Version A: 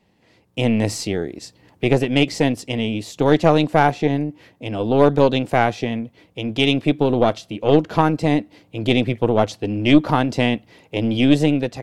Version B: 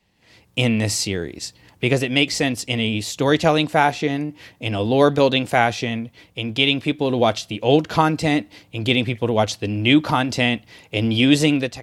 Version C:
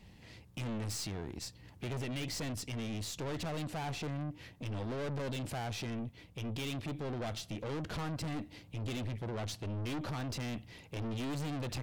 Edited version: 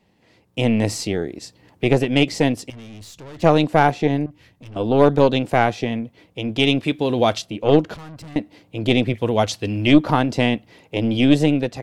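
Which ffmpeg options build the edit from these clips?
-filter_complex "[2:a]asplit=3[a][b][c];[1:a]asplit=2[d][e];[0:a]asplit=6[f][g][h][i][j][k];[f]atrim=end=2.702[l];[a]atrim=start=2.698:end=3.422[m];[g]atrim=start=3.418:end=4.262[n];[b]atrim=start=4.258:end=4.762[o];[h]atrim=start=4.758:end=6.832[p];[d]atrim=start=6.828:end=7.422[q];[i]atrim=start=7.418:end=7.942[r];[c]atrim=start=7.938:end=8.362[s];[j]atrim=start=8.358:end=9.142[t];[e]atrim=start=9.138:end=9.872[u];[k]atrim=start=9.868[v];[l][m]acrossfade=d=0.004:c1=hsin:c2=hsin[w];[w][n]acrossfade=d=0.004:c1=hsin:c2=hsin[x];[x][o]acrossfade=d=0.004:c1=hsin:c2=hsin[y];[y][p]acrossfade=d=0.004:c1=hsin:c2=hsin[z];[z][q]acrossfade=d=0.004:c1=hsin:c2=hsin[aa];[aa][r]acrossfade=d=0.004:c1=hsin:c2=hsin[ab];[ab][s]acrossfade=d=0.004:c1=hsin:c2=hsin[ac];[ac][t]acrossfade=d=0.004:c1=hsin:c2=hsin[ad];[ad][u]acrossfade=d=0.004:c1=hsin:c2=hsin[ae];[ae][v]acrossfade=d=0.004:c1=hsin:c2=hsin"

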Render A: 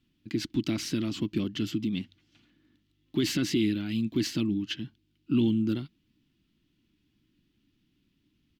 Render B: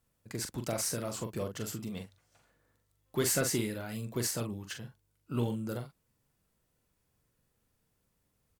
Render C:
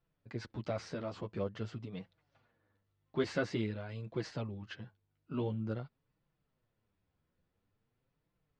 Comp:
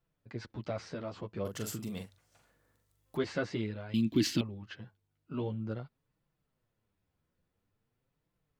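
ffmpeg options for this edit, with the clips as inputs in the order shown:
-filter_complex "[2:a]asplit=3[a][b][c];[a]atrim=end=1.452[d];[1:a]atrim=start=1.448:end=3.172[e];[b]atrim=start=3.168:end=3.942[f];[0:a]atrim=start=3.938:end=4.412[g];[c]atrim=start=4.408[h];[d][e]acrossfade=d=0.004:c1=hsin:c2=hsin[i];[i][f]acrossfade=d=0.004:c1=hsin:c2=hsin[j];[j][g]acrossfade=d=0.004:c1=hsin:c2=hsin[k];[k][h]acrossfade=d=0.004:c1=hsin:c2=hsin"

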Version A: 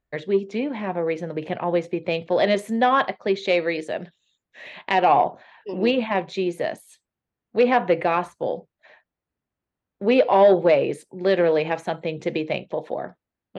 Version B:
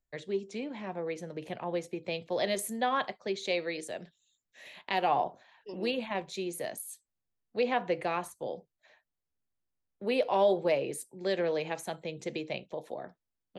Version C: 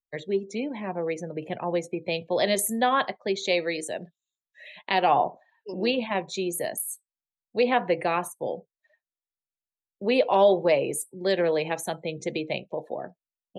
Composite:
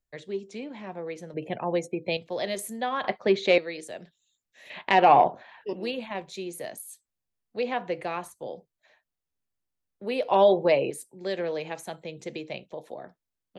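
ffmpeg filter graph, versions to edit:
-filter_complex "[2:a]asplit=2[a][b];[0:a]asplit=2[c][d];[1:a]asplit=5[e][f][g][h][i];[e]atrim=end=1.342[j];[a]atrim=start=1.338:end=2.172[k];[f]atrim=start=2.168:end=3.042[l];[c]atrim=start=3.038:end=3.582[m];[g]atrim=start=3.578:end=4.702[n];[d]atrim=start=4.698:end=5.732[o];[h]atrim=start=5.728:end=10.312[p];[b]atrim=start=10.308:end=10.902[q];[i]atrim=start=10.898[r];[j][k]acrossfade=d=0.004:c1=hsin:c2=hsin[s];[s][l]acrossfade=d=0.004:c1=hsin:c2=hsin[t];[t][m]acrossfade=d=0.004:c1=hsin:c2=hsin[u];[u][n]acrossfade=d=0.004:c1=hsin:c2=hsin[v];[v][o]acrossfade=d=0.004:c1=hsin:c2=hsin[w];[w][p]acrossfade=d=0.004:c1=hsin:c2=hsin[x];[x][q]acrossfade=d=0.004:c1=hsin:c2=hsin[y];[y][r]acrossfade=d=0.004:c1=hsin:c2=hsin"

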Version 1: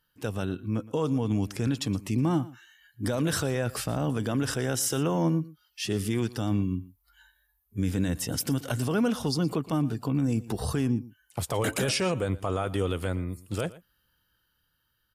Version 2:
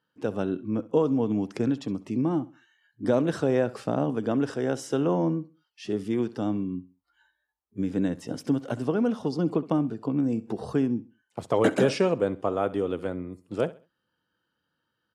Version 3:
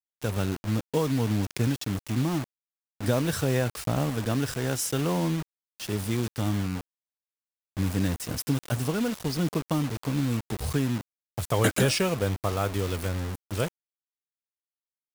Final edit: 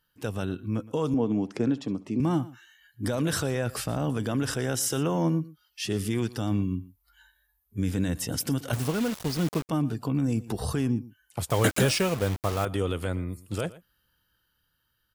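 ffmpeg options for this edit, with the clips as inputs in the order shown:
-filter_complex "[2:a]asplit=2[a][b];[0:a]asplit=4[c][d][e][f];[c]atrim=end=1.142[g];[1:a]atrim=start=1.138:end=2.202[h];[d]atrim=start=2.198:end=8.732[i];[a]atrim=start=8.728:end=9.692[j];[e]atrim=start=9.688:end=11.502[k];[b]atrim=start=11.498:end=12.652[l];[f]atrim=start=12.648[m];[g][h]acrossfade=d=0.004:c1=hsin:c2=hsin[n];[n][i]acrossfade=d=0.004:c1=hsin:c2=hsin[o];[o][j]acrossfade=d=0.004:c1=hsin:c2=hsin[p];[p][k]acrossfade=d=0.004:c1=hsin:c2=hsin[q];[q][l]acrossfade=d=0.004:c1=hsin:c2=hsin[r];[r][m]acrossfade=d=0.004:c1=hsin:c2=hsin"

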